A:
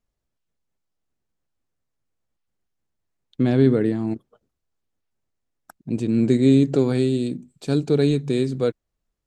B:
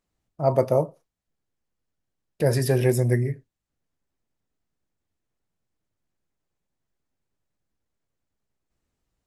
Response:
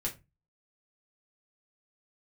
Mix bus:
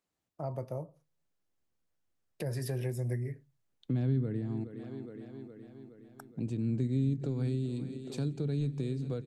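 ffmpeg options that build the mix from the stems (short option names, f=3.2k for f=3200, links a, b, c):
-filter_complex "[0:a]adelay=500,volume=-5.5dB,asplit=3[a][b][c];[b]volume=-24dB[d];[c]volume=-16.5dB[e];[1:a]highpass=f=210:p=1,volume=-4.5dB,asplit=2[f][g];[g]volume=-22.5dB[h];[2:a]atrim=start_sample=2205[i];[d][h]amix=inputs=2:normalize=0[j];[j][i]afir=irnorm=-1:irlink=0[k];[e]aecho=0:1:417|834|1251|1668|2085|2502|2919|3336|3753:1|0.59|0.348|0.205|0.121|0.0715|0.0422|0.0249|0.0147[l];[a][f][k][l]amix=inputs=4:normalize=0,acrossover=split=160[m][n];[n]acompressor=threshold=-38dB:ratio=6[o];[m][o]amix=inputs=2:normalize=0"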